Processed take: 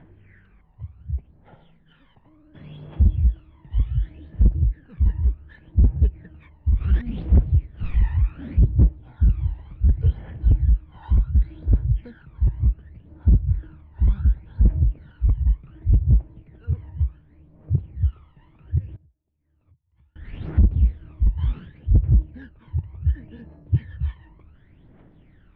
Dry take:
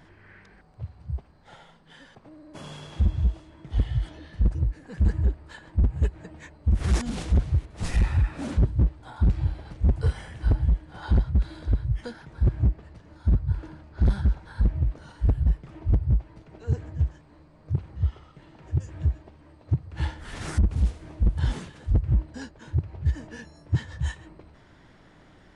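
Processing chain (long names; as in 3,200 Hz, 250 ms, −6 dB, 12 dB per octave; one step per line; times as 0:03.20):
Butterworth low-pass 3,100 Hz 36 dB per octave
parametric band 1,300 Hz −5.5 dB 2.3 octaves
phase shifter 0.68 Hz, delay 1.1 ms, feedback 69%
0:18.96–0:20.16: downward compressor 10 to 1, threshold −54 dBFS, peak gain reduction 43 dB
level −4.5 dB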